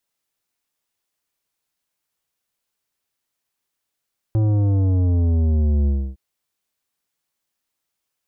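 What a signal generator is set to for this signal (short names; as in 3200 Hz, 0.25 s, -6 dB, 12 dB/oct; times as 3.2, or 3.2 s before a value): sub drop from 110 Hz, over 1.81 s, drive 11 dB, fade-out 0.29 s, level -16 dB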